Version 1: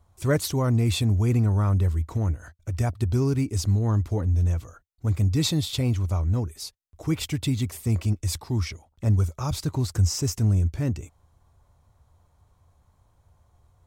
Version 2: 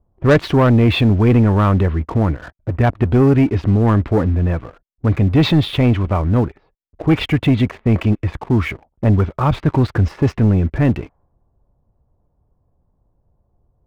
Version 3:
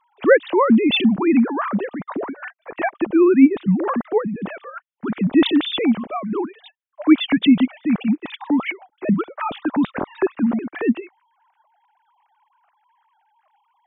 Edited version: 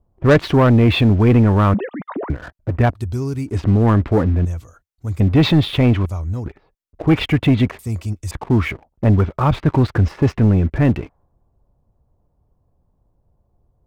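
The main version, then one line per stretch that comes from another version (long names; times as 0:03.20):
2
0:01.74–0:02.30: punch in from 3
0:02.93–0:03.54: punch in from 1, crossfade 0.16 s
0:04.45–0:05.20: punch in from 1
0:06.06–0:06.46: punch in from 1
0:07.79–0:08.31: punch in from 1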